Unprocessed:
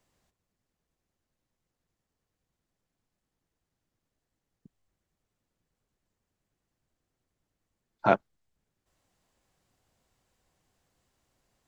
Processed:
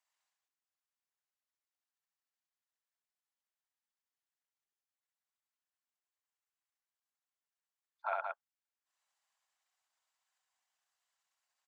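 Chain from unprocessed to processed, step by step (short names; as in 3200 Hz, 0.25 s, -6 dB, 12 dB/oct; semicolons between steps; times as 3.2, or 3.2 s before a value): formant sharpening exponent 1.5; Bessel high-pass 1300 Hz, order 6; loudspeakers at several distances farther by 23 m -2 dB, 61 m -4 dB; gain -4.5 dB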